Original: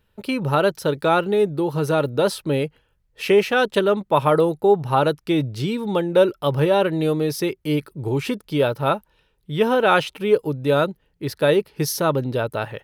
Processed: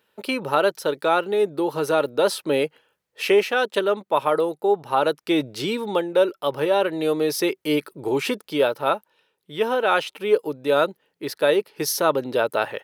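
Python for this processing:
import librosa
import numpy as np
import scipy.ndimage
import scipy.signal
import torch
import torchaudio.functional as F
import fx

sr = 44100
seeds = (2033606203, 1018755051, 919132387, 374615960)

y = scipy.signal.sosfilt(scipy.signal.butter(2, 340.0, 'highpass', fs=sr, output='sos'), x)
y = fx.rider(y, sr, range_db=4, speed_s=0.5)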